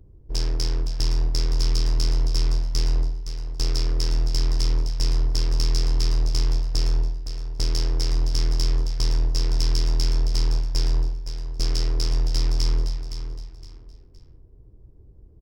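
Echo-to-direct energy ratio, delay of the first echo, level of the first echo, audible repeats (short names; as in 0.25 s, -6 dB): -9.5 dB, 0.515 s, -10.0 dB, 3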